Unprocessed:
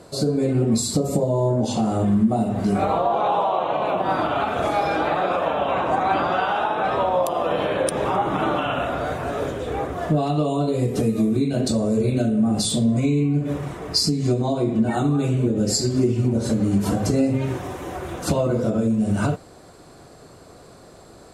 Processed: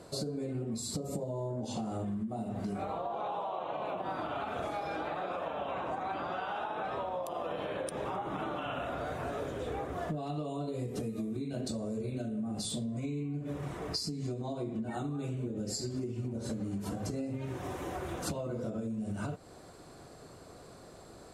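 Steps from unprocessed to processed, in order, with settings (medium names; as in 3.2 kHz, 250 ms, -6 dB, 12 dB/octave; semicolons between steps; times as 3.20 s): compression 10:1, threshold -27 dBFS, peak gain reduction 14 dB; trim -6 dB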